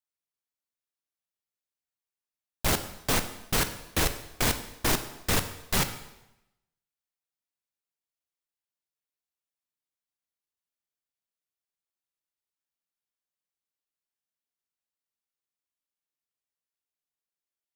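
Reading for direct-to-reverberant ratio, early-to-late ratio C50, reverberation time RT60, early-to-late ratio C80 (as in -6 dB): 9.0 dB, 11.5 dB, 0.95 s, 13.5 dB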